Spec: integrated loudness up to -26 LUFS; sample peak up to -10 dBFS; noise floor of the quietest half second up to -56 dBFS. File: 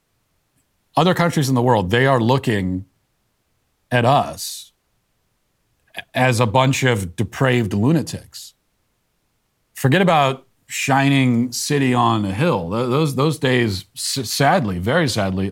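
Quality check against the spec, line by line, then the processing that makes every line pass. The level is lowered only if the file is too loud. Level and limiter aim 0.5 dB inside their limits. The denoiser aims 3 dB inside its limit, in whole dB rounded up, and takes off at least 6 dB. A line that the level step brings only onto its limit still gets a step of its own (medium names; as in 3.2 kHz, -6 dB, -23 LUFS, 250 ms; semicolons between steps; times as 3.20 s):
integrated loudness -18.0 LUFS: fail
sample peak -2.5 dBFS: fail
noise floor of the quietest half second -68 dBFS: pass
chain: trim -8.5 dB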